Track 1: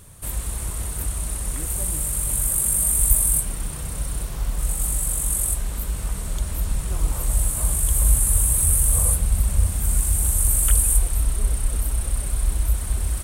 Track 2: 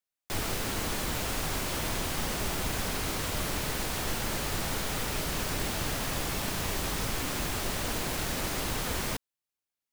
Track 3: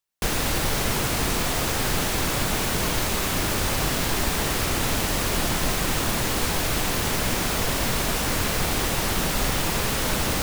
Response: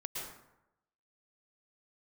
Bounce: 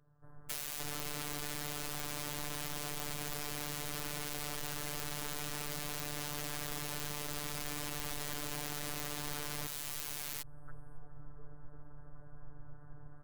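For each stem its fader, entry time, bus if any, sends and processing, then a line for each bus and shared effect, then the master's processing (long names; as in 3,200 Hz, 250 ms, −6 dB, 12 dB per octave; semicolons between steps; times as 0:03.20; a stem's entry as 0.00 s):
−17.0 dB, 0.00 s, no send, elliptic low-pass filter 1,600 Hz, stop band 40 dB
+1.5 dB, 0.50 s, no send, sign of each sample alone
muted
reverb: not used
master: phases set to zero 147 Hz; downward compressor 2.5 to 1, threshold −36 dBFS, peak gain reduction 8 dB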